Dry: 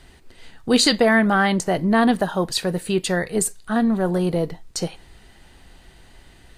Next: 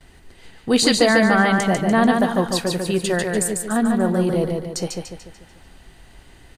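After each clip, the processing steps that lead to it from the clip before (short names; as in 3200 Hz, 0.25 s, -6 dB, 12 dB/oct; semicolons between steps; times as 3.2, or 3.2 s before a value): bell 3900 Hz -2.5 dB; on a send: feedback echo 0.146 s, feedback 45%, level -4 dB; on the sum: gate with hold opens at -43 dBFS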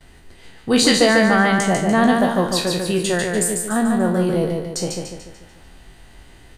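spectral trails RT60 0.39 s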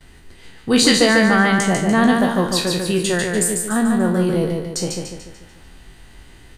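bell 660 Hz -4.5 dB 0.76 oct; gain +1.5 dB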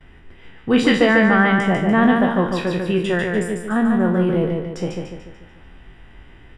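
polynomial smoothing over 25 samples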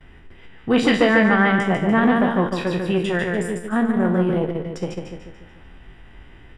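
core saturation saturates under 540 Hz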